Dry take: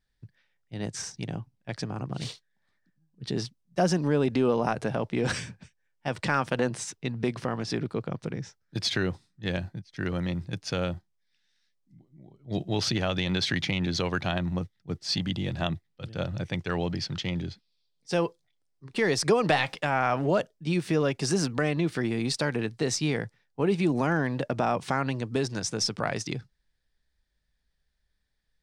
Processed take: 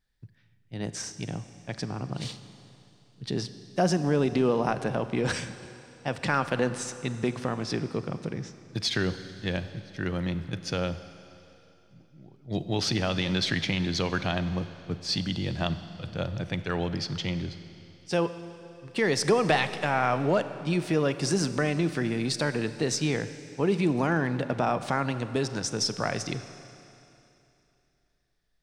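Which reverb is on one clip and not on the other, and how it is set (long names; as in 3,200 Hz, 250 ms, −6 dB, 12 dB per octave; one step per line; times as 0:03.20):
four-comb reverb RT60 2.9 s, combs from 32 ms, DRR 11.5 dB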